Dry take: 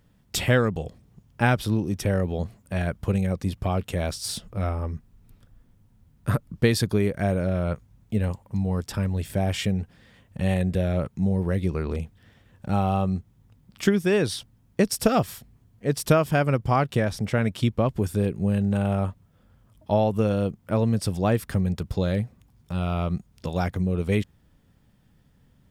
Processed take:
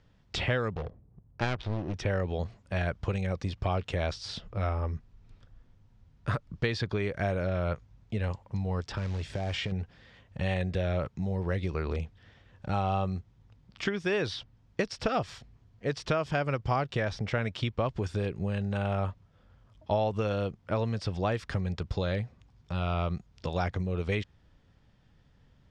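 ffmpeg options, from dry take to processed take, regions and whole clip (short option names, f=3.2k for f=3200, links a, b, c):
-filter_complex "[0:a]asettb=1/sr,asplit=3[a][b][c];[a]atrim=end=0.734[d];[b]atrim=start=0.73:end=1.94,asetpts=PTS-STARTPTS,afade=t=in:d=0.004:c=qsin,afade=t=out:st=1.206:d=0.004:c=qsin,adynamicsmooth=sensitivity=7:basefreq=660,aeval=exprs='clip(val(0),-1,0.0398)':c=same[e];[c]atrim=start=1.936[f];[d][e]acrossfade=d=0.004:c1=hsin:c2=qsin[g];[g][f]acrossfade=d=0.004:c1=qsin:c2=hsin,asettb=1/sr,asplit=3[h][i][j];[h]atrim=end=8.964[k];[i]atrim=start=8.96:end=9.72,asetpts=PTS-STARTPTS,afade=t=in:d=0.004:c=qsin,afade=t=out:st=0.756:d=0.004:c=qsin,acompressor=threshold=-25dB:ratio=12:attack=3.2:release=140:knee=1:detection=peak,acrusher=bits=5:mode=log:mix=0:aa=0.000001[l];[j]atrim=start=9.716[m];[k][l]acrossfade=d=0.004:c1=hsin:c2=qsin[n];[n][m]acrossfade=d=0.004:c1=qsin:c2=hsin,lowpass=f=6k:w=0.5412,lowpass=f=6k:w=1.3066,acrossover=split=790|4000[o][p][q];[o]acompressor=threshold=-25dB:ratio=4[r];[p]acompressor=threshold=-31dB:ratio=4[s];[q]acompressor=threshold=-49dB:ratio=4[t];[r][s][t]amix=inputs=3:normalize=0,equalizer=f=210:t=o:w=1.3:g=-6"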